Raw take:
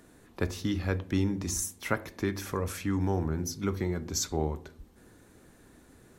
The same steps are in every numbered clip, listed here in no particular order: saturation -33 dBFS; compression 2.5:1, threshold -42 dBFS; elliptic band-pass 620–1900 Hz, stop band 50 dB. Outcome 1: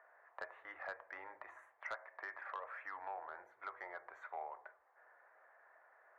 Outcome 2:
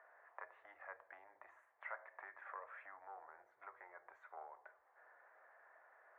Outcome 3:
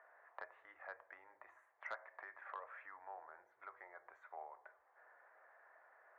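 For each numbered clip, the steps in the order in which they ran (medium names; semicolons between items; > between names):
elliptic band-pass > compression > saturation; compression > saturation > elliptic band-pass; compression > elliptic band-pass > saturation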